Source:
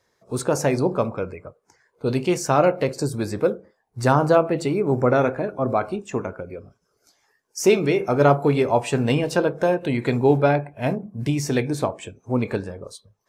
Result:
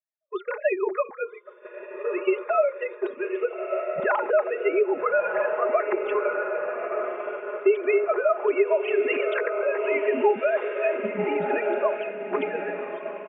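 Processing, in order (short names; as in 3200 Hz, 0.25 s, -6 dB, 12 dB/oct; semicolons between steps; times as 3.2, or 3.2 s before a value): sine-wave speech; low shelf 360 Hz -12 dB; diffused feedback echo 1.25 s, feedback 57%, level -8 dB; expander -30 dBFS; compressor 6:1, threshold -23 dBFS, peak gain reduction 12.5 dB; notch 450 Hz, Q 12; comb 4.8 ms, depth 89%; gain +2 dB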